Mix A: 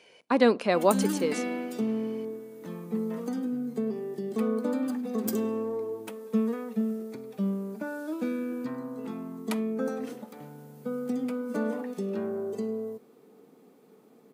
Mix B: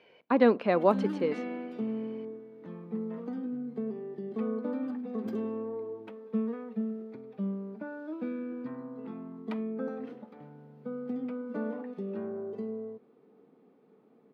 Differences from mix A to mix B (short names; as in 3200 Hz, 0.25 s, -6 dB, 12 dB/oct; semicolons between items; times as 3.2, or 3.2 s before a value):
background -4.0 dB; master: add air absorption 350 m